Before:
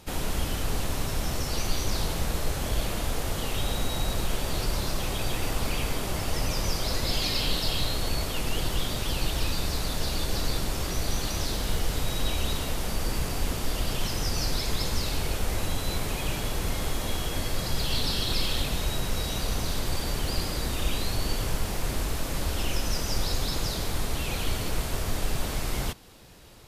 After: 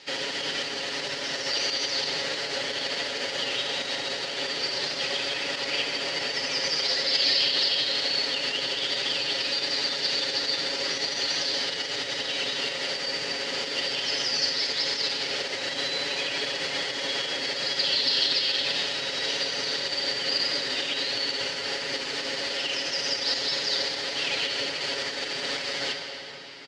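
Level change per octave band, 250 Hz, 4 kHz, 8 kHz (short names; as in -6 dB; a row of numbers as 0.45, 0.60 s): -6.0, +8.5, -2.0 dB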